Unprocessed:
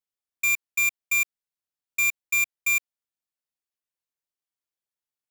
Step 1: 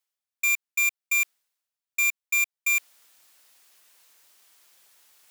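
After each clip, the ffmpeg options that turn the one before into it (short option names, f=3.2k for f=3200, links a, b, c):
-af "highpass=f=760:p=1,areverse,acompressor=mode=upward:threshold=-33dB:ratio=2.5,areverse"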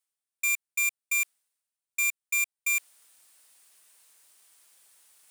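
-af "equalizer=f=9.1k:t=o:w=0.43:g=10,volume=-4dB"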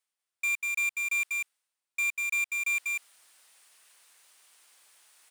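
-filter_complex "[0:a]aecho=1:1:194:0.562,asplit=2[a][b];[b]highpass=f=720:p=1,volume=11dB,asoftclip=type=tanh:threshold=-19.5dB[c];[a][c]amix=inputs=2:normalize=0,lowpass=f=3.9k:p=1,volume=-6dB,volume=-2dB"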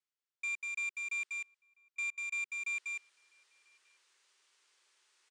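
-filter_complex "[0:a]highpass=f=210:w=0.5412,highpass=f=210:w=1.3066,equalizer=f=260:t=q:w=4:g=-9,equalizer=f=380:t=q:w=4:g=8,equalizer=f=700:t=q:w=4:g=-9,lowpass=f=7.3k:w=0.5412,lowpass=f=7.3k:w=1.3066,asplit=2[a][b];[b]adelay=991.3,volume=-26dB,highshelf=f=4k:g=-22.3[c];[a][c]amix=inputs=2:normalize=0,volume=-8dB"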